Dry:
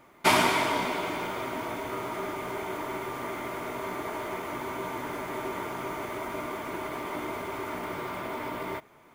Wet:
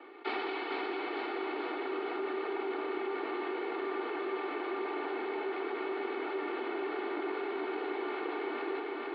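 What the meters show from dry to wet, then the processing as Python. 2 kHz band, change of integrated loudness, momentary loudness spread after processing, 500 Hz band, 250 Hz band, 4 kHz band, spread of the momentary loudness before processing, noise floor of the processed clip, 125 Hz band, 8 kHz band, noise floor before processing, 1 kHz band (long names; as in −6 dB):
−6.0 dB, −4.5 dB, 1 LU, −0.5 dB, −2.0 dB, −10.0 dB, 10 LU, −39 dBFS, below −30 dB, below −40 dB, −56 dBFS, −6.5 dB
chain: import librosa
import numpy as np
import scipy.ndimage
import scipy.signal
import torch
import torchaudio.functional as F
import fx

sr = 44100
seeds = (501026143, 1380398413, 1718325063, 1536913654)

y = fx.lower_of_two(x, sr, delay_ms=2.3)
y = scipy.signal.sosfilt(scipy.signal.cheby1(5, 1.0, [230.0, 4300.0], 'bandpass', fs=sr, output='sos'), y)
y = fx.rider(y, sr, range_db=4, speed_s=0.5)
y = fx.high_shelf(y, sr, hz=2800.0, db=-11.5)
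y = fx.notch(y, sr, hz=1000.0, q=13.0)
y = y + 0.62 * np.pad(y, (int(2.7 * sr / 1000.0), 0))[:len(y)]
y = fx.echo_feedback(y, sr, ms=448, feedback_pct=58, wet_db=-4.0)
y = fx.env_flatten(y, sr, amount_pct=50)
y = y * librosa.db_to_amplitude(-7.0)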